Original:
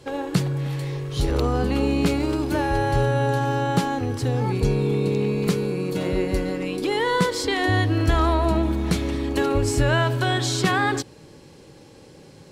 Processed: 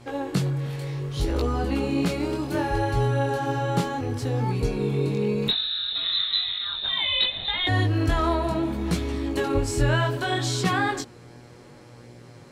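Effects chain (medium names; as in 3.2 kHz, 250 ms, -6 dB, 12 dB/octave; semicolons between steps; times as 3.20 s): mains buzz 120 Hz, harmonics 20, -47 dBFS -5 dB/octave; 5.48–7.67 s: frequency inversion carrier 4 kHz; chorus 0.66 Hz, delay 17 ms, depth 6.8 ms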